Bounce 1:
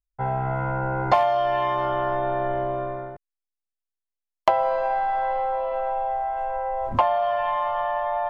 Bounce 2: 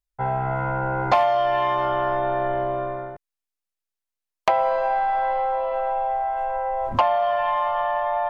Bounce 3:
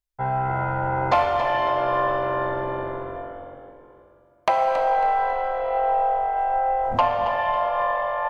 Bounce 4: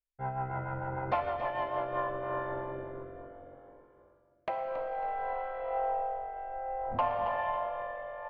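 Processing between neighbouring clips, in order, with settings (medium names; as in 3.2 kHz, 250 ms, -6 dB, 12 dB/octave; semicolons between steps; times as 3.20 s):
sine folder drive 5 dB, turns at -3.5 dBFS; bass shelf 440 Hz -3.5 dB; trim -6 dB
on a send: frequency-shifting echo 275 ms, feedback 39%, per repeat -46 Hz, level -11 dB; on the sum: plate-style reverb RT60 2.7 s, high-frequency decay 0.9×, DRR 3.5 dB; trim -1.5 dB
low-pass 2.6 kHz 12 dB/octave; rotary cabinet horn 6.7 Hz, later 0.6 Hz, at 1.53 s; trim -8.5 dB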